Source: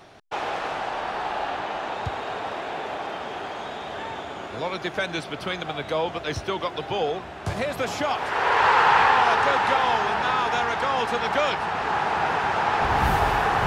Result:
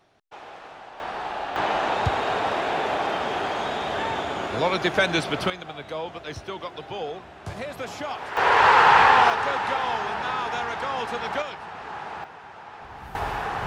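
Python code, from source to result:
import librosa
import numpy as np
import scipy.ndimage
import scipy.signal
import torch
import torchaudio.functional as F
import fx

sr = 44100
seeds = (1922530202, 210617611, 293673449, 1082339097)

y = fx.gain(x, sr, db=fx.steps((0.0, -13.5), (1.0, -2.5), (1.56, 6.0), (5.5, -6.5), (8.37, 2.5), (9.3, -4.5), (11.42, -11.0), (12.24, -19.5), (13.15, -7.0)))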